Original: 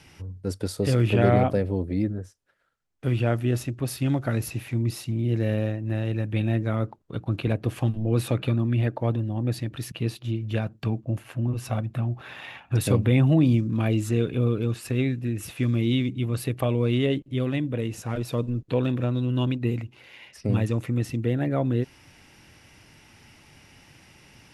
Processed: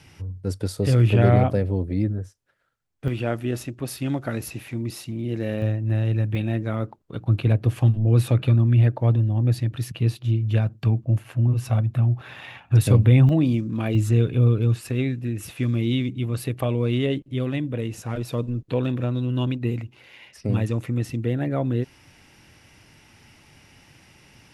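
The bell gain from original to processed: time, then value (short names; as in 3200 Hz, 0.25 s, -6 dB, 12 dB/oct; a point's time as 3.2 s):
bell 110 Hz 0.8 oct
+6 dB
from 3.08 s -5.5 dB
from 5.62 s +6 dB
from 6.35 s -1 dB
from 7.22 s +8 dB
from 13.29 s -3 dB
from 13.95 s +8 dB
from 14.81 s +1 dB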